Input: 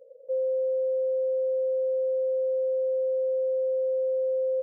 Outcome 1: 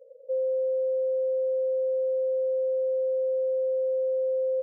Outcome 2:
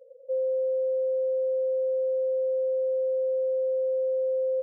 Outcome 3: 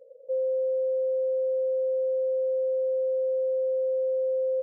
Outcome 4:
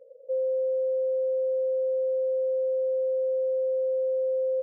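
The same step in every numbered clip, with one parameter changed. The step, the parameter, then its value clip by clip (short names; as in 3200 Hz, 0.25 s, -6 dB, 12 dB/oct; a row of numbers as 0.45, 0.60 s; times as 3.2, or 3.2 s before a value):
spectral gate, under each frame's peak: -25, -10, -60, -45 dB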